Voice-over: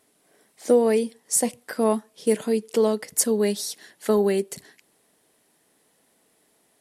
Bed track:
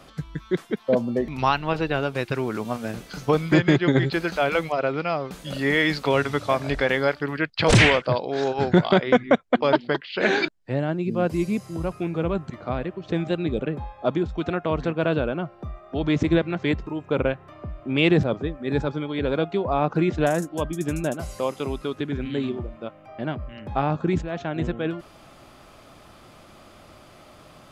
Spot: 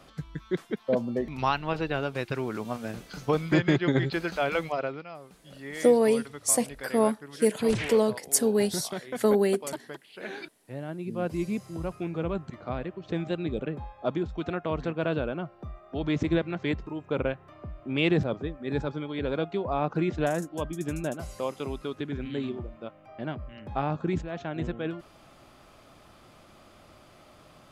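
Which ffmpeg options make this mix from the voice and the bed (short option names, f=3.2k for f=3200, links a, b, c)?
-filter_complex "[0:a]adelay=5150,volume=-2dB[a];[1:a]volume=7dB,afade=t=out:st=4.76:d=0.29:silence=0.237137,afade=t=in:st=10.54:d=0.92:silence=0.251189[b];[a][b]amix=inputs=2:normalize=0"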